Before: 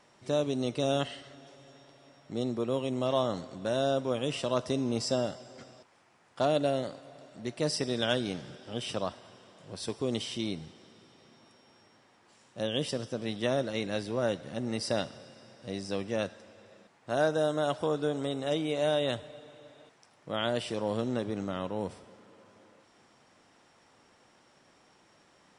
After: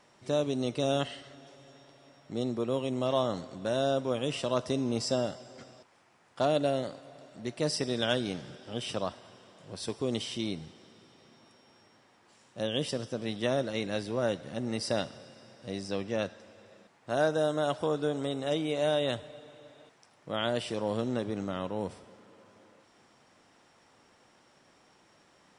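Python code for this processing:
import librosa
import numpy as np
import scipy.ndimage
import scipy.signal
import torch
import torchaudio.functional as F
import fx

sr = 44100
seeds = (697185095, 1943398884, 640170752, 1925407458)

y = fx.lowpass(x, sr, hz=7600.0, slope=12, at=(15.88, 16.41))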